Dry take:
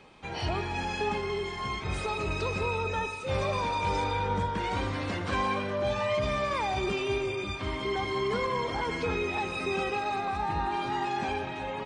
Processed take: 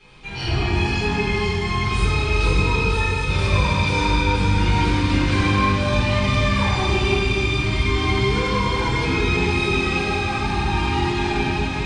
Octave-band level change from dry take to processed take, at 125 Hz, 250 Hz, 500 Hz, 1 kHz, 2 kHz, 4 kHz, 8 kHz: +15.5, +13.0, +6.0, +6.0, +11.5, +12.0, +11.5 decibels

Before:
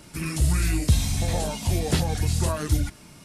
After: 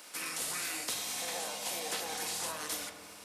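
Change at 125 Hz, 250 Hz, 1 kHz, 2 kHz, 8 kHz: −36.0, −21.0, −6.5, −4.0, −3.5 decibels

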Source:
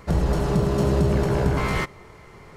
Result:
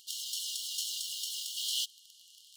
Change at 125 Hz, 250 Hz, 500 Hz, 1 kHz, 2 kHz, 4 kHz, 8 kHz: below −40 dB, below −40 dB, below −40 dB, below −40 dB, −23.5 dB, +6.5 dB, +7.0 dB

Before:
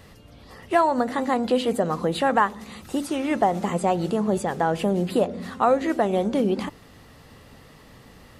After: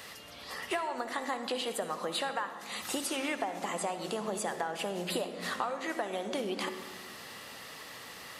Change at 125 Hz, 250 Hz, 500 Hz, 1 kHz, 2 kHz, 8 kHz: −17.5, −15.0, −12.5, −12.0, −5.5, +1.0 decibels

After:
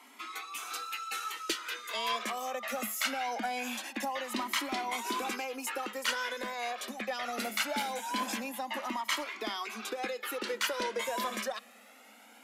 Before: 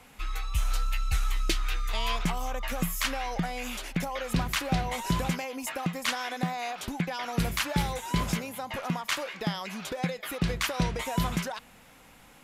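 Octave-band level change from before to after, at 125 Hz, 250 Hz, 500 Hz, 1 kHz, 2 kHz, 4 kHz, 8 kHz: below −25 dB, −8.5 dB, −1.5 dB, −1.0 dB, −1.0 dB, −1.5 dB, −2.0 dB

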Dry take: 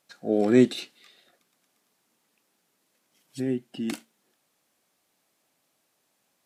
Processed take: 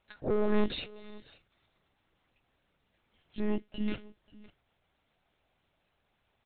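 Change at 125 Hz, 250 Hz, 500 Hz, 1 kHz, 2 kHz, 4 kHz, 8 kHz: −6.0 dB, −9.0 dB, −7.5 dB, −2.5 dB, −5.5 dB, −4.0 dB, below −30 dB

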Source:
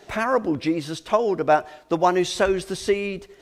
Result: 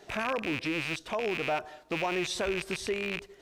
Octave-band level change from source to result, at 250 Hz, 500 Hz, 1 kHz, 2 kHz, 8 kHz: −10.0, −11.0, −12.5, −3.0, −6.0 decibels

